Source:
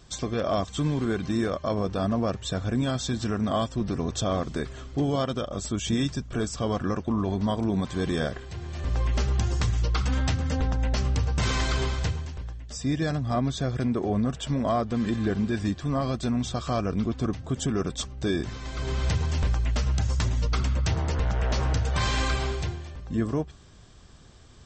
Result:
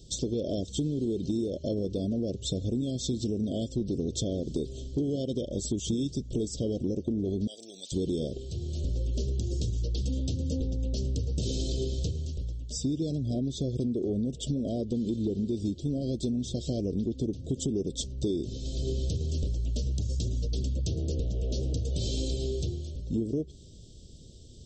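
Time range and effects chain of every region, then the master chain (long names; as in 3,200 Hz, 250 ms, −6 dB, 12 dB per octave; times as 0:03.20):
0:07.47–0:07.92: high-pass filter 1,200 Hz + high-shelf EQ 7,300 Hz +12 dB
whole clip: inverse Chebyshev band-stop filter 920–2,000 Hz, stop band 50 dB; dynamic equaliser 350 Hz, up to +6 dB, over −39 dBFS, Q 1.2; downward compressor, threshold −29 dBFS; level +2 dB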